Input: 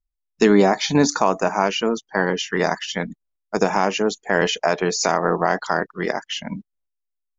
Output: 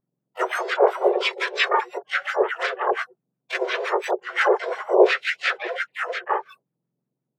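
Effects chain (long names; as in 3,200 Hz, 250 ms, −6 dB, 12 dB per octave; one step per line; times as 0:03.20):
frequency axis turned over on the octave scale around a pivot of 1,600 Hz
auto-filter low-pass sine 5.7 Hz 420–2,000 Hz
pitch-shifted copies added +5 semitones −2 dB, +12 semitones −12 dB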